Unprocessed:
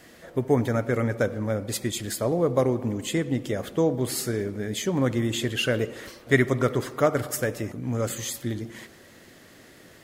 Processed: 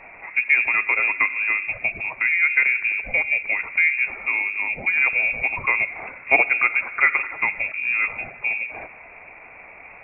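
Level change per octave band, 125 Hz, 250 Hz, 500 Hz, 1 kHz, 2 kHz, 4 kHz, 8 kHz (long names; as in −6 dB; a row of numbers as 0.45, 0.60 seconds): below −20 dB, −18.5 dB, −11.5 dB, +4.0 dB, +16.5 dB, below −10 dB, below −40 dB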